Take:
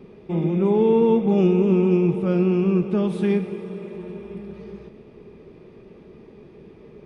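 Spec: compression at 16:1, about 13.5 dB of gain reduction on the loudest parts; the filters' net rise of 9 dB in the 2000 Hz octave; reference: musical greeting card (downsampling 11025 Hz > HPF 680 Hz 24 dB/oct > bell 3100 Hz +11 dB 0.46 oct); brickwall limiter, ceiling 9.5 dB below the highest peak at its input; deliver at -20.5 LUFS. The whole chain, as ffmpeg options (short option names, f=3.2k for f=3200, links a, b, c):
-af "equalizer=f=2k:t=o:g=7.5,acompressor=threshold=-27dB:ratio=16,alimiter=level_in=4.5dB:limit=-24dB:level=0:latency=1,volume=-4.5dB,aresample=11025,aresample=44100,highpass=f=680:w=0.5412,highpass=f=680:w=1.3066,equalizer=f=3.1k:t=o:w=0.46:g=11,volume=27.5dB"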